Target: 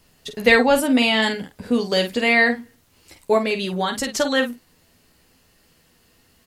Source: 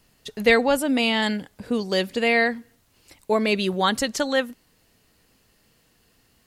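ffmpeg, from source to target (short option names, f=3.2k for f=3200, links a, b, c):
-filter_complex "[0:a]asplit=3[a][b][c];[a]afade=t=out:st=3.37:d=0.02[d];[b]acompressor=threshold=-23dB:ratio=6,afade=t=in:st=3.37:d=0.02,afade=t=out:st=4.13:d=0.02[e];[c]afade=t=in:st=4.13:d=0.02[f];[d][e][f]amix=inputs=3:normalize=0,asplit=2[g][h];[h]aecho=0:1:12|50:0.473|0.376[i];[g][i]amix=inputs=2:normalize=0,volume=2.5dB"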